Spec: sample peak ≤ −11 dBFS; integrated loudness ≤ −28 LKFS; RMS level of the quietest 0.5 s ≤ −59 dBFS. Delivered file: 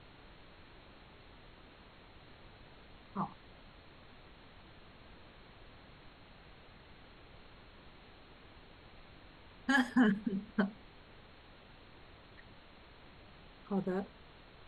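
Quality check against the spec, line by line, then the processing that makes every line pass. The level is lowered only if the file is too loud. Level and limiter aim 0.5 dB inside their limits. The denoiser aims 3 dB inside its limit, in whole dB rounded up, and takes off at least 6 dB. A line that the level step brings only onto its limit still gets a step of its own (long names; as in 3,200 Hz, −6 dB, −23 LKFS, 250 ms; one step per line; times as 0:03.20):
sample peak −18.5 dBFS: in spec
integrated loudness −35.0 LKFS: in spec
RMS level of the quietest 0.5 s −57 dBFS: out of spec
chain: broadband denoise 6 dB, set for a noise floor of −57 dBFS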